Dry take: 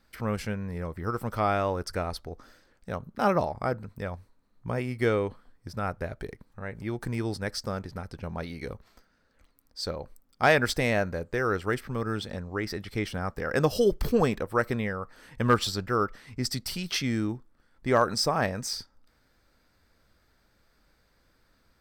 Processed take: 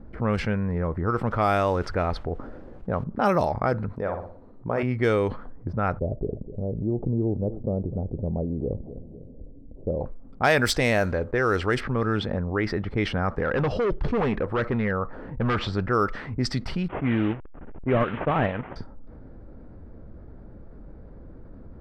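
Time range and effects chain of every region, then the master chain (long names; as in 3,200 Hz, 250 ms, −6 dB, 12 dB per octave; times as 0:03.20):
0:01.31–0:03.04: high-shelf EQ 8,400 Hz +3 dB + bit-depth reduction 10 bits, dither triangular
0:03.93–0:04.83: bass and treble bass −11 dB, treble +8 dB + flutter between parallel walls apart 10.1 metres, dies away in 0.37 s
0:05.99–0:10.01: inverse Chebyshev low-pass filter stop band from 1,600 Hz, stop band 50 dB + repeating echo 252 ms, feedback 40%, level −23 dB
0:10.70–0:12.15: one scale factor per block 7 bits + parametric band 170 Hz −5 dB 0.26 octaves
0:13.43–0:15.73: hard clipping −25.5 dBFS + high-frequency loss of the air 61 metres
0:16.88–0:18.76: linear delta modulator 16 kbit/s, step −32 dBFS + downward expander −30 dBFS + transient designer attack −1 dB, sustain −9 dB
whole clip: low-pass that shuts in the quiet parts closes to 430 Hz, open at −20.5 dBFS; envelope flattener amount 50%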